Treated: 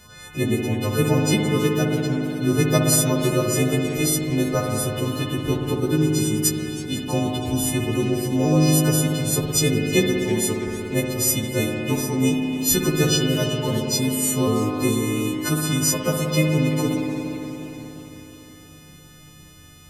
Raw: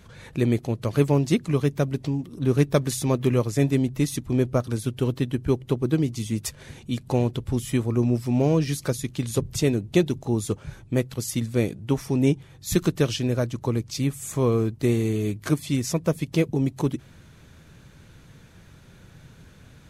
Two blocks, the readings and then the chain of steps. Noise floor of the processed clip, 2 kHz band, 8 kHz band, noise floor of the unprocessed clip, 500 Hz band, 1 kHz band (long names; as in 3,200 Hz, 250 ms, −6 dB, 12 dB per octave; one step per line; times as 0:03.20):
−46 dBFS, +8.0 dB, +11.5 dB, −50 dBFS, +2.5 dB, +5.5 dB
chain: every partial snapped to a pitch grid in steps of 3 semitones
spring reverb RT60 3.9 s, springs 58 ms, chirp 35 ms, DRR −0.5 dB
feedback echo with a swinging delay time 325 ms, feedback 58%, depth 151 cents, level −19.5 dB